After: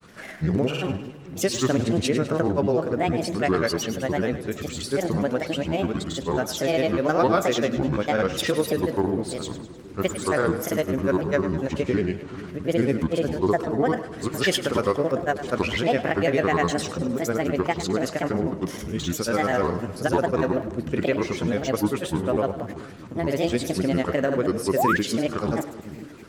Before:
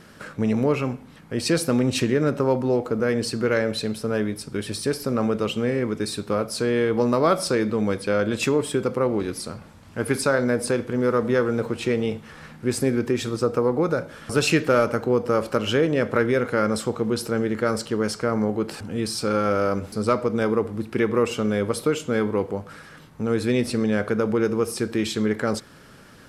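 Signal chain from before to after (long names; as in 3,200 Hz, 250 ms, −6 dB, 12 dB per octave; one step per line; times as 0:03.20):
granular cloud, pitch spread up and down by 7 semitones
echo with a time of its own for lows and highs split 390 Hz, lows 432 ms, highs 102 ms, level −12.5 dB
sound drawn into the spectrogram rise, 0:24.76–0:24.97, 520–1,900 Hz −21 dBFS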